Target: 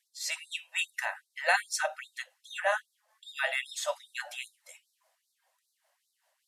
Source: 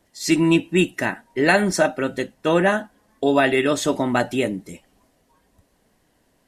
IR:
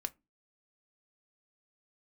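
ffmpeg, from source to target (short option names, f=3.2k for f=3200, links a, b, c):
-af "tremolo=f=5.1:d=0.32,afftfilt=real='re*gte(b*sr/1024,480*pow(3700/480,0.5+0.5*sin(2*PI*2.5*pts/sr)))':imag='im*gte(b*sr/1024,480*pow(3700/480,0.5+0.5*sin(2*PI*2.5*pts/sr)))':win_size=1024:overlap=0.75,volume=-5.5dB"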